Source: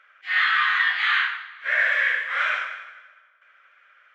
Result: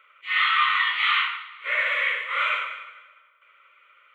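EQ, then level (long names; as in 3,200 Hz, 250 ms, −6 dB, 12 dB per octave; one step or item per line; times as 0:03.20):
phaser with its sweep stopped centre 1,100 Hz, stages 8
+4.0 dB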